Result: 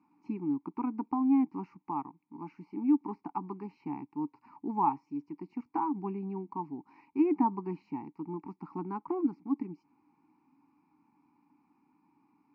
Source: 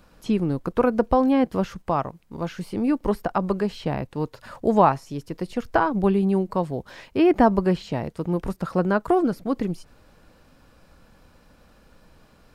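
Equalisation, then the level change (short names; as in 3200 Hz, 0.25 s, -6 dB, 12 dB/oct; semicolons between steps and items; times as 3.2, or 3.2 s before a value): vowel filter u; speaker cabinet 180–5000 Hz, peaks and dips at 210 Hz -4 dB, 320 Hz -5 dB, 510 Hz -6 dB, 1400 Hz -5 dB, 2100 Hz -8 dB, 3500 Hz -10 dB; fixed phaser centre 1400 Hz, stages 4; +7.0 dB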